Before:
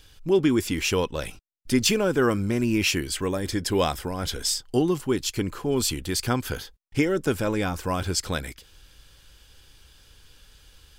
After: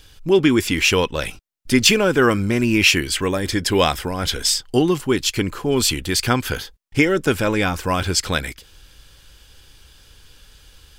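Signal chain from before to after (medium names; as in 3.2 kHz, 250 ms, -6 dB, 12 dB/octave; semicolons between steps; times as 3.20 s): dynamic bell 2.4 kHz, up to +6 dB, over -40 dBFS, Q 0.74; trim +5 dB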